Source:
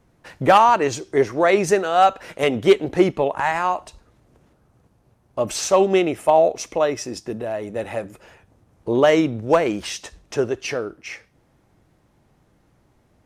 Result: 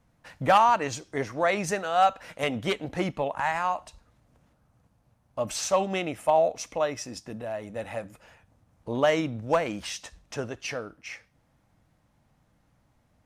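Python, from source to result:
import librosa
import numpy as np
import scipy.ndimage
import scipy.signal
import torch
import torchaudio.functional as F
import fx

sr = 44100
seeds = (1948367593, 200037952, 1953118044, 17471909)

y = fx.peak_eq(x, sr, hz=380.0, db=-12.0, octaves=0.44)
y = F.gain(torch.from_numpy(y), -5.5).numpy()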